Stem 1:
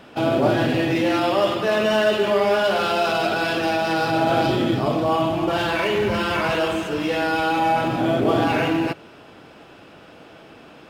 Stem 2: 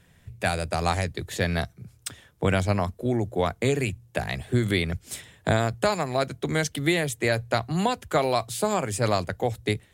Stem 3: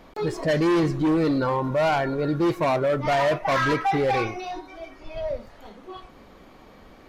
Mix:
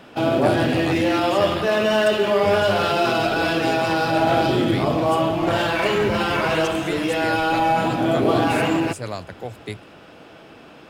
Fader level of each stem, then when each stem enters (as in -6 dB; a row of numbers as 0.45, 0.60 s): +0.5, -6.5, -9.0 dB; 0.00, 0.00, 2.35 s